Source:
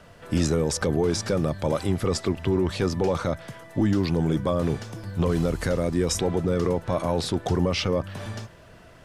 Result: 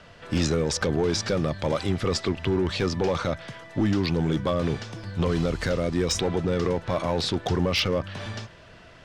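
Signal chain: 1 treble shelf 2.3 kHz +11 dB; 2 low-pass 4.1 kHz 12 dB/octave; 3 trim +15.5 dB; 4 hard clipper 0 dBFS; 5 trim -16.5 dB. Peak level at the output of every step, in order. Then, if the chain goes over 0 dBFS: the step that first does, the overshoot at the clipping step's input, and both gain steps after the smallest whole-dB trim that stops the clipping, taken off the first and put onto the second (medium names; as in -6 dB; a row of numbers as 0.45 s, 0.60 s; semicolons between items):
-4.5 dBFS, -10.5 dBFS, +5.0 dBFS, 0.0 dBFS, -16.5 dBFS; step 3, 5.0 dB; step 3 +10.5 dB, step 5 -11.5 dB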